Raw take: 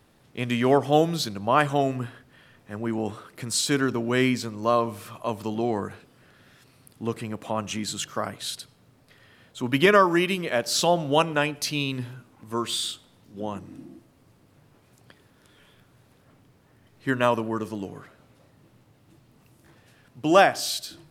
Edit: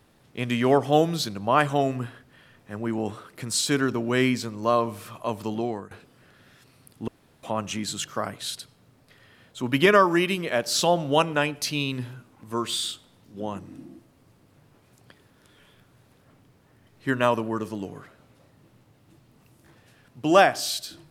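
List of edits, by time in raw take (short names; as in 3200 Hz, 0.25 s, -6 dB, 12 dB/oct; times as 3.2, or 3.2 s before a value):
5.55–5.91 fade out, to -16 dB
7.08–7.43 room tone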